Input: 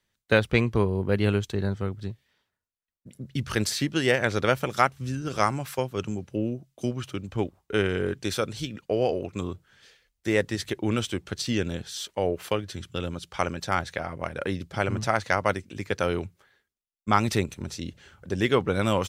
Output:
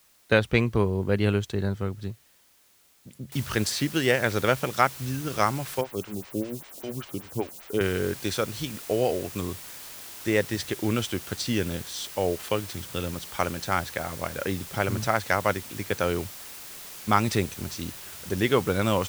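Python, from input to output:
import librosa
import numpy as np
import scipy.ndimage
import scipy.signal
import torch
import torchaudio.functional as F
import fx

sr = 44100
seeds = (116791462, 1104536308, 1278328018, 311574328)

y = fx.noise_floor_step(x, sr, seeds[0], at_s=3.32, before_db=-61, after_db=-42, tilt_db=0.0)
y = fx.stagger_phaser(y, sr, hz=5.1, at=(5.81, 7.81))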